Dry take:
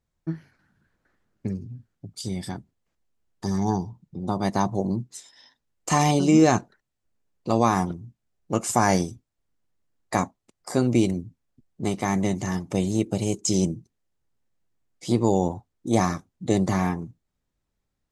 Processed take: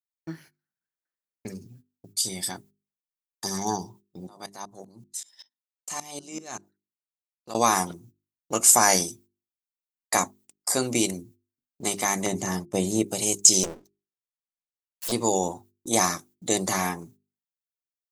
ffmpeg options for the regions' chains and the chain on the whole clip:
-filter_complex "[0:a]asettb=1/sr,asplit=3[a][b][c];[a]atrim=end=4.274[d];[b]atrim=start=4.27:end=7.55,asetpts=PTS-STARTPTS,afade=t=in:d=0.004:c=qsin,afade=t=out:st=3.276:d=0.004:c=qsin,acompressor=threshold=-31dB:ratio=2.5:attack=3.2:release=140:knee=1:detection=peak,aeval=exprs='val(0)*pow(10,-22*if(lt(mod(-5.2*n/s,1),2*abs(-5.2)/1000),1-mod(-5.2*n/s,1)/(2*abs(-5.2)/1000),(mod(-5.2*n/s,1)-2*abs(-5.2)/1000)/(1-2*abs(-5.2)/1000))/20)':c=same[e];[c]atrim=start=7.546[f];[d][e]acrossfade=d=0.004:c1=hsin:c2=qsin[g];[g][f]acrossfade=d=0.004:c1=qsin:c2=hsin,asettb=1/sr,asplit=3[h][i][j];[h]atrim=end=12.264[k];[i]atrim=start=12.26:end=13.08,asetpts=PTS-STARTPTS,afade=t=in:d=0.004:c=qsin,afade=t=out:st=0.816:d=0.004:c=qsin,agate=range=-34dB:threshold=-36dB:ratio=16:release=100:detection=peak,tiltshelf=f=1.1k:g=5.5[l];[j]atrim=start=13.076[m];[k][l]acrossfade=d=0.004:c1=hsin:c2=qsin[n];[n][m]acrossfade=d=0.004:c1=qsin:c2=hsin,asettb=1/sr,asplit=3[o][p][q];[o]atrim=end=13.634[r];[p]atrim=start=13.63:end=15.12,asetpts=PTS-STARTPTS,afade=t=in:d=0.004:c=qsin,afade=t=out:st=1.486:d=0.004:c=qsin,lowpass=5.2k,aeval=exprs='abs(val(0))':c=same[s];[q]atrim=start=15.116[t];[r][s]acrossfade=d=0.004:c1=hsin:c2=qsin[u];[u][t]acrossfade=d=0.004:c1=qsin:c2=hsin,aemphasis=mode=production:type=riaa,agate=range=-28dB:threshold=-51dB:ratio=16:detection=peak,bandreject=f=50:t=h:w=6,bandreject=f=100:t=h:w=6,bandreject=f=150:t=h:w=6,bandreject=f=200:t=h:w=6,bandreject=f=250:t=h:w=6,bandreject=f=300:t=h:w=6,bandreject=f=350:t=h:w=6,bandreject=f=400:t=h:w=6,volume=1dB"

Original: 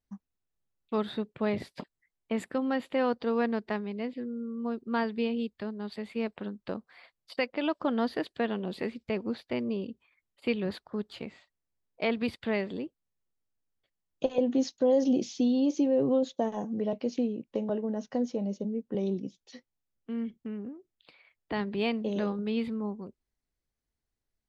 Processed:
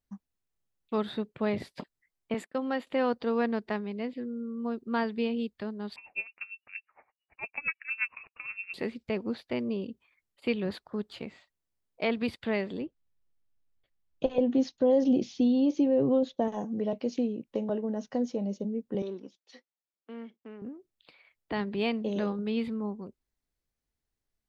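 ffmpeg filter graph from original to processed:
-filter_complex "[0:a]asettb=1/sr,asplit=3[a][b][c];[a]atrim=end=2.344[d];[b]atrim=start=2.34:end=2.87,asetpts=PTS-STARTPTS,afade=t=in:d=0.004:c=qsin,afade=t=out:st=0.526:d=0.004:c=qsin,highpass=270,agate=range=-33dB:threshold=-39dB:ratio=3:release=100:detection=peak[e];[c]atrim=start=2.866[f];[d][e]acrossfade=d=0.004:c1=hsin:c2=qsin[g];[g][f]acrossfade=d=0.004:c1=qsin:c2=hsin,asettb=1/sr,asplit=3[h][i][j];[h]atrim=end=5.964[k];[i]atrim=start=5.96:end=8.74,asetpts=PTS-STARTPTS,afade=t=in:d=0.004:c=qsin,afade=t=out:st=2.776:d=0.004:c=qsin,lowpass=f=2.5k:t=q:w=0.5098,lowpass=f=2.5k:t=q:w=0.6013,lowpass=f=2.5k:t=q:w=0.9,lowpass=f=2.5k:t=q:w=2.563,afreqshift=-2900,aeval=exprs='val(0)*pow(10,-21*(0.5-0.5*cos(2*PI*8.7*n/s))/20)':c=same[l];[j]atrim=start=8.736[m];[k][l]acrossfade=d=0.004:c1=hsin:c2=qsin[n];[n][m]acrossfade=d=0.004:c1=qsin:c2=hsin,asettb=1/sr,asplit=3[o][p][q];[o]atrim=end=12.814[r];[p]atrim=start=12.81:end=16.48,asetpts=PTS-STARTPTS,afade=t=in:d=0.004:c=qsin,afade=t=out:st=3.666:d=0.004:c=qsin,lowpass=4.3k,lowshelf=f=93:g=11[s];[q]atrim=start=16.476[t];[r][s]acrossfade=d=0.004:c1=hsin:c2=qsin[u];[u][t]acrossfade=d=0.004:c1=qsin:c2=hsin,asettb=1/sr,asplit=3[v][w][x];[v]atrim=end=19.024[y];[w]atrim=start=19.02:end=20.62,asetpts=PTS-STARTPTS,afade=t=in:d=0.004:c=qsin,afade=t=out:st=1.596:d=0.004:c=qsin,aeval=exprs='if(lt(val(0),0),0.708*val(0),val(0))':c=same,agate=range=-6dB:threshold=-59dB:ratio=16:release=100:detection=peak,highpass=370,lowpass=5.5k[z];[x]atrim=start=20.616[aa];[y][z]acrossfade=d=0.004:c1=hsin:c2=qsin[ab];[ab][aa]acrossfade=d=0.004:c1=qsin:c2=hsin"

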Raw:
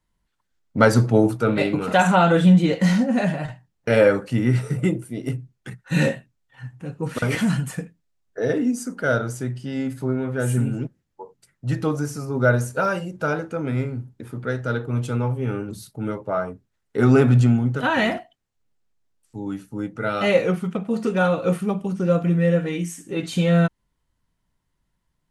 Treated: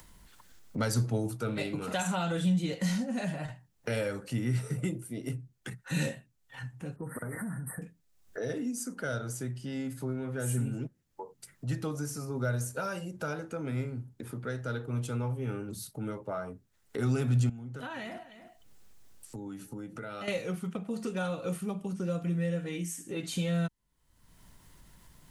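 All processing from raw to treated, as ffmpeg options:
-filter_complex "[0:a]asettb=1/sr,asplit=3[a][b][c];[a]atrim=end=6.964[d];[b]atrim=start=6.96:end=7.82,asetpts=PTS-STARTPTS,afade=t=in:d=0.004:c=qsin,afade=t=out:st=0.856:d=0.004:c=qsin,asuperstop=centerf=4200:order=20:qfactor=0.66,acompressor=threshold=-28dB:ratio=3:attack=3.2:release=140:knee=1:detection=peak[e];[c]atrim=start=7.816[f];[d][e]acrossfade=d=0.004:c1=hsin:c2=qsin[g];[g][f]acrossfade=d=0.004:c1=qsin:c2=hsin,asettb=1/sr,asplit=3[h][i][j];[h]atrim=end=17.494[k];[i]atrim=start=17.49:end=20.28,asetpts=PTS-STARTPTS,afade=t=in:d=0.004:c=qsin,afade=t=out:st=2.786:d=0.004:c=qsin,acompressor=threshold=-34dB:ratio=3:attack=3.2:release=140:knee=1:detection=peak,aecho=1:1:301:0.0794,atrim=end_sample=123039[l];[j]atrim=start=20.276[m];[k][l]acrossfade=d=0.004:c1=hsin:c2=qsin[n];[n][m]acrossfade=d=0.004:c1=qsin:c2=hsin,acrossover=split=150|3000[o][p][q];[p]acompressor=threshold=-25dB:ratio=3[r];[o][r][q]amix=inputs=3:normalize=0,highshelf=f=6.1k:g=8.5,acompressor=mode=upward:threshold=-26dB:ratio=2.5,volume=-8.5dB"

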